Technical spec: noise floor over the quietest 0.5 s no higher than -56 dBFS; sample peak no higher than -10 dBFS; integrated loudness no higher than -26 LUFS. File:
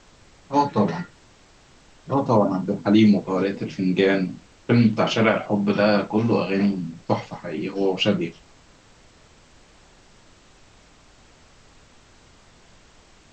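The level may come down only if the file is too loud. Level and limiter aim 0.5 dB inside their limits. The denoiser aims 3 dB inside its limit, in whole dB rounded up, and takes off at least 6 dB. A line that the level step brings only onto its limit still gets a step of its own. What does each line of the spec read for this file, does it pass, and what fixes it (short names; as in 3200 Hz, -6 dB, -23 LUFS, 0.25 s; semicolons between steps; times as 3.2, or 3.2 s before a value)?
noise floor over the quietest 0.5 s -53 dBFS: fail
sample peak -4.0 dBFS: fail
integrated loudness -21.5 LUFS: fail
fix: gain -5 dB; limiter -10.5 dBFS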